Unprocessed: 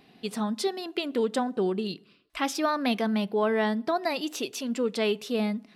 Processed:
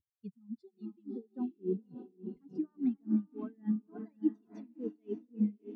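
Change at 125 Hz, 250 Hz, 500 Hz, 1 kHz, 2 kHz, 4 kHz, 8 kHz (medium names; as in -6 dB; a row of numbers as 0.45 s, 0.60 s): -5.5 dB, -5.5 dB, -16.0 dB, -29.0 dB, under -35 dB, under -40 dB, under -40 dB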